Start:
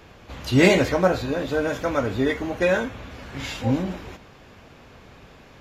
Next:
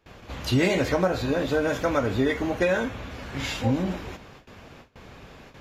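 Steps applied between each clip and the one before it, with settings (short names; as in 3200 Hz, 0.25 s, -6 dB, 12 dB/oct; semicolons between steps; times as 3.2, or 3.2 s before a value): gate with hold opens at -38 dBFS; compressor 6:1, threshold -20 dBFS, peak gain reduction 9.5 dB; gain +1.5 dB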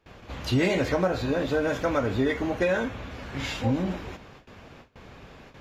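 high shelf 7000 Hz -6 dB; in parallel at -11.5 dB: hard clip -20 dBFS, distortion -13 dB; on the sum: gain -3 dB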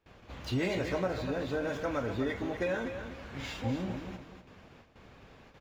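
median filter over 3 samples; feedback echo 0.246 s, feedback 29%, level -9 dB; gain -8 dB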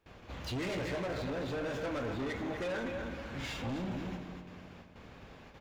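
soft clip -35.5 dBFS, distortion -8 dB; spring tank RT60 2.1 s, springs 56 ms, chirp 50 ms, DRR 10 dB; gain +2 dB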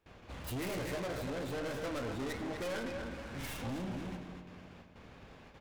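tracing distortion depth 0.32 ms; gain -2 dB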